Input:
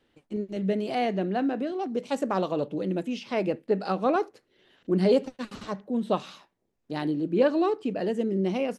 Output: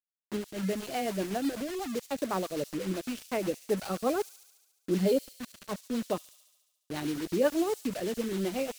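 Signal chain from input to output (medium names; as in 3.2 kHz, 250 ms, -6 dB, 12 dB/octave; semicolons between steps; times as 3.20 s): reverb removal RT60 0.96 s; bit crusher 6-bit; rotary cabinet horn 8 Hz; feedback echo behind a high-pass 71 ms, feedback 69%, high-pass 5.4 kHz, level -4 dB; trim -2 dB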